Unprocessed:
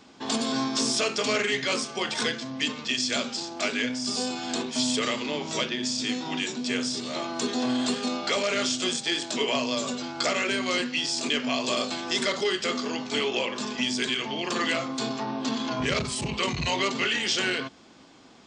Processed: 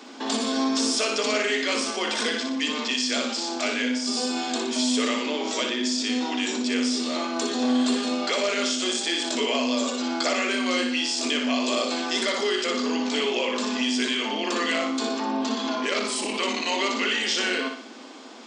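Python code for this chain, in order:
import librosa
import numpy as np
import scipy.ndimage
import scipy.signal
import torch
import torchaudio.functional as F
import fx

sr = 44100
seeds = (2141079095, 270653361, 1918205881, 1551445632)

p1 = scipy.signal.sosfilt(scipy.signal.ellip(4, 1.0, 40, 230.0, 'highpass', fs=sr, output='sos'), x)
p2 = fx.over_compress(p1, sr, threshold_db=-39.0, ratio=-1.0)
p3 = p1 + F.gain(torch.from_numpy(p2), -3.0).numpy()
y = fx.echo_feedback(p3, sr, ms=60, feedback_pct=46, wet_db=-6.0)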